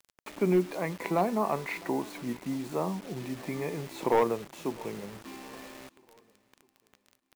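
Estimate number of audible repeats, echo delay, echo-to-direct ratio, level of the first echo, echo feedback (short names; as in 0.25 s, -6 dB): 2, 0.655 s, -23.0 dB, -24.0 dB, 46%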